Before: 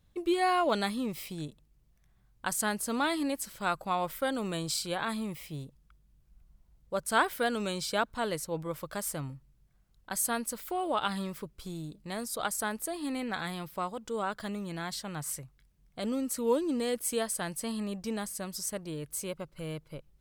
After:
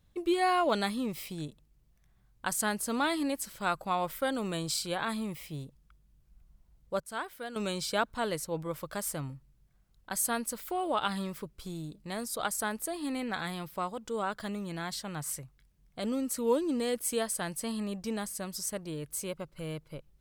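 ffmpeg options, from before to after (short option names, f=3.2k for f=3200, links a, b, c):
-filter_complex "[0:a]asplit=3[a][b][c];[a]atrim=end=7.002[d];[b]atrim=start=6.998:end=7.562,asetpts=PTS-STARTPTS,volume=-11dB[e];[c]atrim=start=7.558[f];[d][e]acrossfade=d=0.004:c1=hsin:c2=hsin[g];[g][f]acrossfade=d=0.004:c1=hsin:c2=hsin"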